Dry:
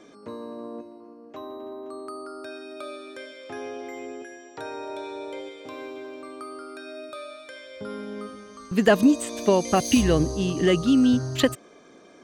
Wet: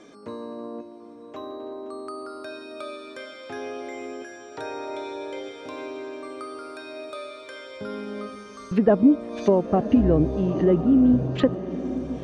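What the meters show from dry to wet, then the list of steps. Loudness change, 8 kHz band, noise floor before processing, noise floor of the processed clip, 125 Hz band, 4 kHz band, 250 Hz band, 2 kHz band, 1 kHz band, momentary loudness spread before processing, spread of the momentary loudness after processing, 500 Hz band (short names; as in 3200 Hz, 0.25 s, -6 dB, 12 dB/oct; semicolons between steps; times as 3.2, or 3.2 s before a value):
0.0 dB, -16.0 dB, -51 dBFS, -43 dBFS, +2.0 dB, -9.0 dB, +2.0 dB, -6.0 dB, -1.5 dB, 20 LU, 20 LU, +1.0 dB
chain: treble ducked by the level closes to 740 Hz, closed at -19.5 dBFS; diffused feedback echo 1.03 s, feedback 58%, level -12 dB; gain +1.5 dB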